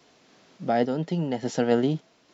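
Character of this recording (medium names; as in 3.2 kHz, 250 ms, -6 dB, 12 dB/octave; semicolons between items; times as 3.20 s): random-step tremolo 3.5 Hz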